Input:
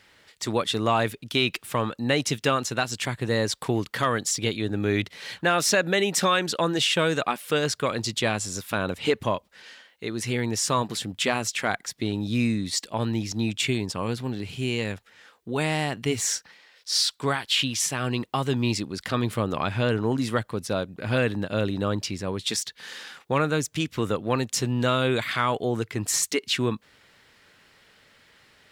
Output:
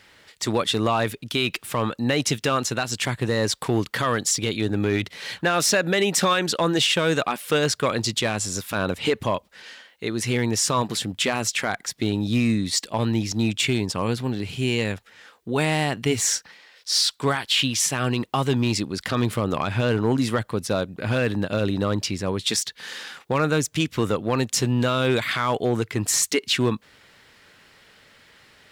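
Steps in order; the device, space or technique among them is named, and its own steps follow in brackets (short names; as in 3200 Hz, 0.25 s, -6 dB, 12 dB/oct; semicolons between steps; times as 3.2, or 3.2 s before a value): limiter into clipper (limiter -15 dBFS, peak gain reduction 5.5 dB; hard clip -17 dBFS, distortion -27 dB); gain +4 dB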